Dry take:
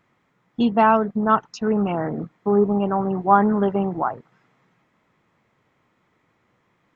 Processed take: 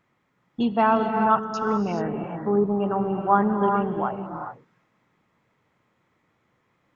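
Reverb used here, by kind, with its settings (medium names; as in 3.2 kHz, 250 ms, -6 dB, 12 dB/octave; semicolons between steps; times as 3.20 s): gated-style reverb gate 450 ms rising, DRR 4.5 dB; trim -4 dB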